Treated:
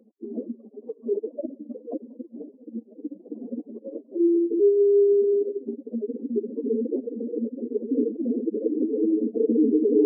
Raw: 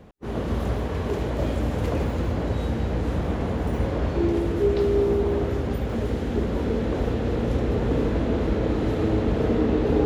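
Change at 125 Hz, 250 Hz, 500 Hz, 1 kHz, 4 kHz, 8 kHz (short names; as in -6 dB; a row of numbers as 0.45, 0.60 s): under -25 dB, +0.5 dB, +1.5 dB, under -25 dB, under -40 dB, n/a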